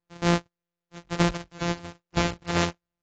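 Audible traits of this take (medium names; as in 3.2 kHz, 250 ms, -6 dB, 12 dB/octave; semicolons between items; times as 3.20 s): a buzz of ramps at a fixed pitch in blocks of 256 samples; AAC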